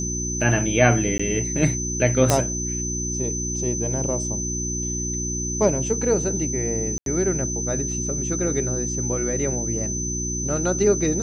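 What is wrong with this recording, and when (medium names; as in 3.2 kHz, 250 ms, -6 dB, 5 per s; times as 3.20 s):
hum 60 Hz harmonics 6 -29 dBFS
whine 6.1 kHz -27 dBFS
1.18–1.20 s: dropout 15 ms
2.30 s: pop -3 dBFS
6.98–7.06 s: dropout 82 ms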